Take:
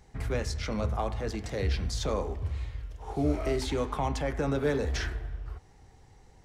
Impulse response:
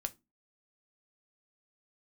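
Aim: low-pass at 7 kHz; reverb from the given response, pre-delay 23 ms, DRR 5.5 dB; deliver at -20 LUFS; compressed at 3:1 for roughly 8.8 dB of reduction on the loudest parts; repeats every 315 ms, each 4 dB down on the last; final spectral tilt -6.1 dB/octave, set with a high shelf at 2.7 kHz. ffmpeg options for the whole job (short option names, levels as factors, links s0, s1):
-filter_complex "[0:a]lowpass=7000,highshelf=f=2700:g=-6,acompressor=threshold=0.0178:ratio=3,aecho=1:1:315|630|945|1260|1575|1890|2205|2520|2835:0.631|0.398|0.25|0.158|0.0994|0.0626|0.0394|0.0249|0.0157,asplit=2[s0][s1];[1:a]atrim=start_sample=2205,adelay=23[s2];[s1][s2]afir=irnorm=-1:irlink=0,volume=0.562[s3];[s0][s3]amix=inputs=2:normalize=0,volume=6.31"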